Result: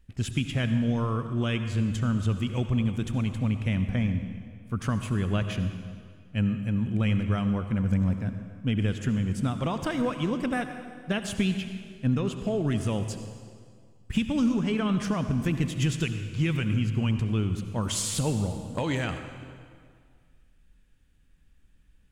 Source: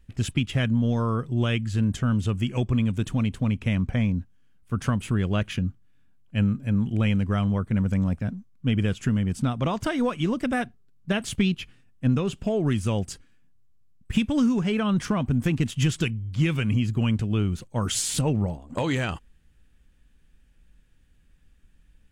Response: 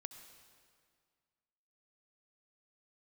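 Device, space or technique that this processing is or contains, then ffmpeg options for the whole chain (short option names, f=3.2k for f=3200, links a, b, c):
stairwell: -filter_complex "[1:a]atrim=start_sample=2205[a];[0:a][a]afir=irnorm=-1:irlink=0,volume=2dB"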